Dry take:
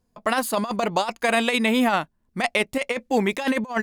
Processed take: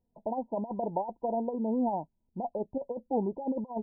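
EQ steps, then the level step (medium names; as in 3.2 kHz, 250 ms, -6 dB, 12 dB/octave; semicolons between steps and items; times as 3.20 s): brick-wall FIR low-pass 1 kHz; -8.0 dB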